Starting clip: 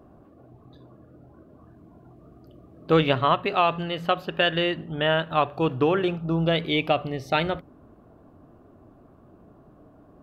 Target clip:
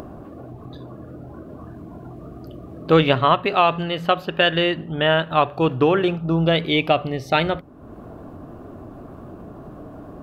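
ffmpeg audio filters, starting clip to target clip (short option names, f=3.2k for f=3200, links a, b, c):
-af "acompressor=mode=upward:threshold=-32dB:ratio=2.5,volume=4.5dB"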